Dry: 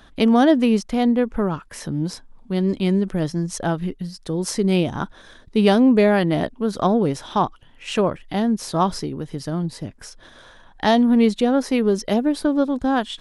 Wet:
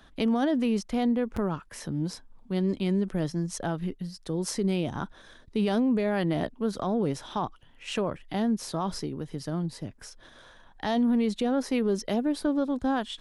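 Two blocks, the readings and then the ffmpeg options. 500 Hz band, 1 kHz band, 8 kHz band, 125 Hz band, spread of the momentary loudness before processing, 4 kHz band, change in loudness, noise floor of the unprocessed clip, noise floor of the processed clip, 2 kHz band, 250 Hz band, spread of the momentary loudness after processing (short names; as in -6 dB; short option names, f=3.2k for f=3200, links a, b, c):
-9.0 dB, -10.0 dB, -6.0 dB, -7.0 dB, 14 LU, -8.0 dB, -8.5 dB, -49 dBFS, -55 dBFS, -9.0 dB, -8.0 dB, 11 LU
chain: -filter_complex "[0:a]acrossover=split=100[a][b];[a]aeval=exprs='(mod(13.3*val(0)+1,2)-1)/13.3':c=same[c];[b]alimiter=limit=-13dB:level=0:latency=1:release=31[d];[c][d]amix=inputs=2:normalize=0,volume=-6dB"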